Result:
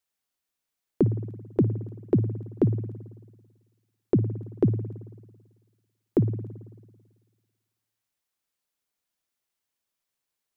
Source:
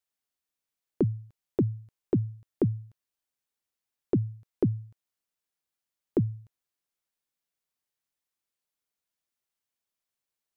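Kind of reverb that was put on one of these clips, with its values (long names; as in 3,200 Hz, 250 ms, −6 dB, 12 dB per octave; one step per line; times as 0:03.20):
spring reverb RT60 1.5 s, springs 55 ms, chirp 75 ms, DRR 11.5 dB
level +3.5 dB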